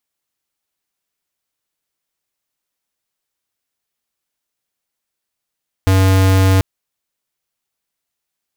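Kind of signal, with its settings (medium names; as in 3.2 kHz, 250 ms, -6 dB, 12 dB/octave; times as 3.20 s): tone square 95.1 Hz -11 dBFS 0.74 s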